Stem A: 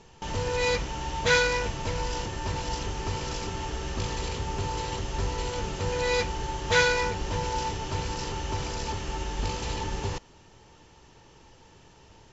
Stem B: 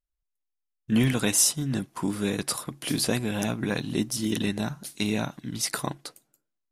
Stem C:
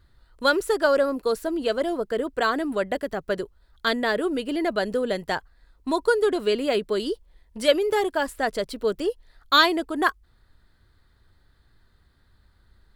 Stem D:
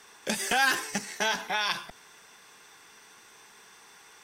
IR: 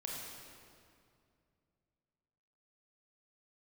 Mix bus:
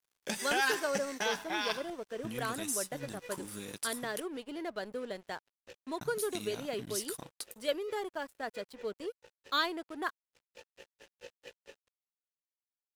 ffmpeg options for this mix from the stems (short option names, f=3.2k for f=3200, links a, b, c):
-filter_complex "[0:a]asplit=3[a][b][c];[a]bandpass=f=530:t=q:w=8,volume=0dB[d];[b]bandpass=f=1.84k:t=q:w=8,volume=-6dB[e];[c]bandpass=f=2.48k:t=q:w=8,volume=-9dB[f];[d][e][f]amix=inputs=3:normalize=0,aeval=exprs='val(0)*pow(10,-31*(0.5-0.5*cos(2*PI*4.5*n/s))/20)':c=same,adelay=1700,volume=1dB[g];[1:a]acompressor=threshold=-33dB:ratio=2.5,adelay=1350,volume=-4.5dB,asplit=3[h][i][j];[h]atrim=end=4.2,asetpts=PTS-STARTPTS,afade=t=out:st=4.196:d=0.004:c=hsin[k];[i]atrim=start=4.2:end=6.01,asetpts=PTS-STARTPTS,volume=0[l];[j]atrim=start=6.01,asetpts=PTS-STARTPTS,afade=t=in:d=0.004:c=hsin[m];[k][l][m]concat=n=3:v=0:a=1[n];[2:a]highpass=59,volume=-13dB,asplit=2[o][p];[3:a]volume=-5.5dB[q];[p]apad=whole_len=618612[r];[g][r]sidechaincompress=threshold=-47dB:ratio=8:attack=5.1:release=411[s];[s][n]amix=inputs=2:normalize=0,crystalizer=i=3:c=0,acompressor=threshold=-41dB:ratio=2,volume=0dB[t];[o][q][t]amix=inputs=3:normalize=0,aeval=exprs='sgn(val(0))*max(abs(val(0))-0.00266,0)':c=same"